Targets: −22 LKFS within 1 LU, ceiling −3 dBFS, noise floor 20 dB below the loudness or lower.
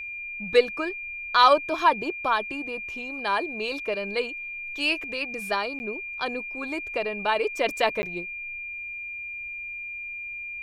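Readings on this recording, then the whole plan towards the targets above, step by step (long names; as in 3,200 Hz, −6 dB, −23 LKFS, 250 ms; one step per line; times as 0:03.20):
number of dropouts 2; longest dropout 10 ms; interfering tone 2,400 Hz; level of the tone −33 dBFS; integrated loudness −26.5 LKFS; sample peak −4.0 dBFS; target loudness −22.0 LKFS
→ repair the gap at 0:05.79/0:08.02, 10 ms
notch filter 2,400 Hz, Q 30
level +4.5 dB
brickwall limiter −3 dBFS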